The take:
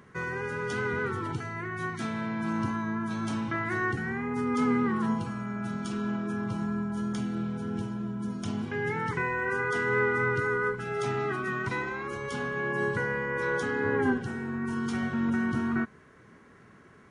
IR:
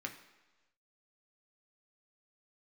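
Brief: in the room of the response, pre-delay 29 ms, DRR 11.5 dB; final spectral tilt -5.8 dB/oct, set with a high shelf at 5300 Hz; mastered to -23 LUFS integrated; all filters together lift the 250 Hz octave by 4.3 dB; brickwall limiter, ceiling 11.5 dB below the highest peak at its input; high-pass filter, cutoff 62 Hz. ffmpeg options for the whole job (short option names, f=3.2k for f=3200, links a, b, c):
-filter_complex "[0:a]highpass=62,equalizer=f=250:t=o:g=5,highshelf=f=5.3k:g=5.5,alimiter=limit=-23.5dB:level=0:latency=1,asplit=2[a][b];[1:a]atrim=start_sample=2205,adelay=29[c];[b][c]afir=irnorm=-1:irlink=0,volume=-11.5dB[d];[a][d]amix=inputs=2:normalize=0,volume=8dB"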